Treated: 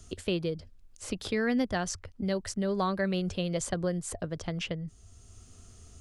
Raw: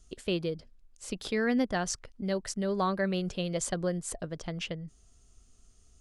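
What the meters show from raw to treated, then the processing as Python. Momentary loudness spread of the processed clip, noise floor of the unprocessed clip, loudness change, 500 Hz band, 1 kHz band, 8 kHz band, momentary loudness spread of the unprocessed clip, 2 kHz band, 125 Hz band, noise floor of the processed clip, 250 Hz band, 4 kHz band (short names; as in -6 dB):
9 LU, -61 dBFS, +0.5 dB, 0.0 dB, -0.5 dB, -1.0 dB, 11 LU, 0.0 dB, +2.0 dB, -55 dBFS, +1.0 dB, +0.5 dB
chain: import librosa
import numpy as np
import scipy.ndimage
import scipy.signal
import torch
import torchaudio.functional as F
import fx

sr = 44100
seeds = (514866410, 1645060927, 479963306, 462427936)

y = fx.peak_eq(x, sr, hz=89.0, db=14.5, octaves=0.54)
y = fx.band_squash(y, sr, depth_pct=40)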